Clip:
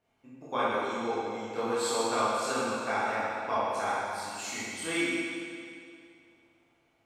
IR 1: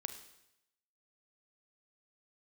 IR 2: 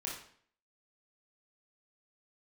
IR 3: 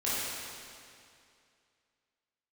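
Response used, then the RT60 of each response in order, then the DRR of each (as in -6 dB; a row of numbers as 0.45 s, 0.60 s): 3; 0.85 s, 0.55 s, 2.4 s; 8.0 dB, -4.0 dB, -10.5 dB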